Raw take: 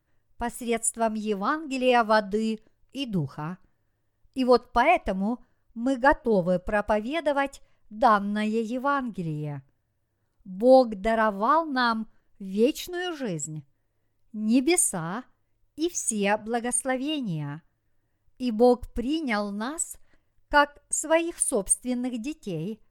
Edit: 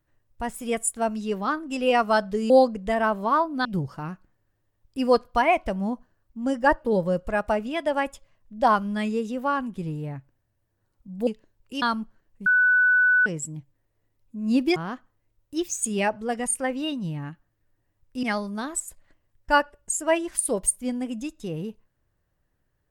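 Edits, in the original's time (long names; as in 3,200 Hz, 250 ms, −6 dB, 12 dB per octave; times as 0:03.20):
0:02.50–0:03.05: swap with 0:10.67–0:11.82
0:12.46–0:13.26: beep over 1,490 Hz −15.5 dBFS
0:14.76–0:15.01: remove
0:18.48–0:19.26: remove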